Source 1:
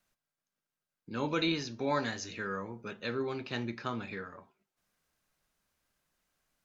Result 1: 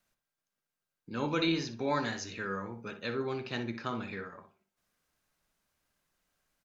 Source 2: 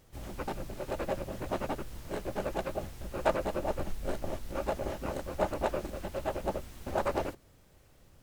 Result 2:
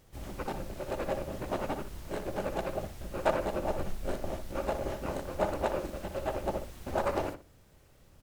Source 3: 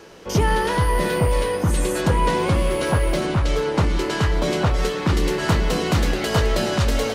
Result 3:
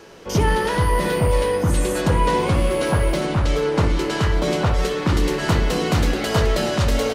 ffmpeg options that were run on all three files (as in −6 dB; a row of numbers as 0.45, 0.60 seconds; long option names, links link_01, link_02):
-filter_complex "[0:a]asplit=2[link_01][link_02];[link_02]adelay=61,lowpass=frequency=2300:poles=1,volume=-8dB,asplit=2[link_03][link_04];[link_04]adelay=61,lowpass=frequency=2300:poles=1,volume=0.23,asplit=2[link_05][link_06];[link_06]adelay=61,lowpass=frequency=2300:poles=1,volume=0.23[link_07];[link_01][link_03][link_05][link_07]amix=inputs=4:normalize=0"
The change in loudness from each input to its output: +0.5, +0.5, +1.0 LU